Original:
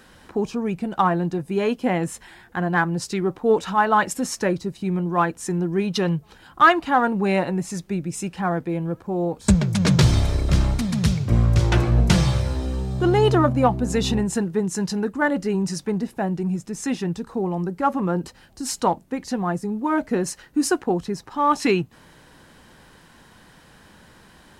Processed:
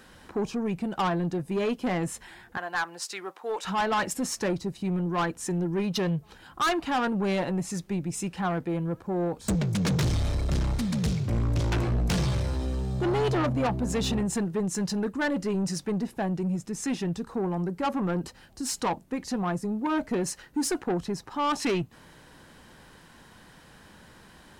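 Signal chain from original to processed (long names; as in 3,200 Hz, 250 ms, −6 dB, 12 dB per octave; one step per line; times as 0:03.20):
0:02.57–0:03.65: high-pass filter 800 Hz 12 dB per octave
soft clipping −20 dBFS, distortion −9 dB
level −2 dB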